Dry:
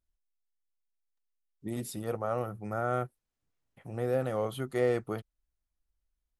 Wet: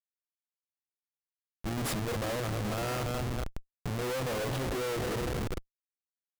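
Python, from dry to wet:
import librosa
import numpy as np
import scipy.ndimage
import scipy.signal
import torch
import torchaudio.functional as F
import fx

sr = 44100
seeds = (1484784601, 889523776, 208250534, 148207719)

y = fx.echo_split(x, sr, split_hz=460.0, low_ms=297, high_ms=226, feedback_pct=52, wet_db=-12.0)
y = fx.schmitt(y, sr, flips_db=-41.0)
y = F.gain(torch.from_numpy(y), 3.0).numpy()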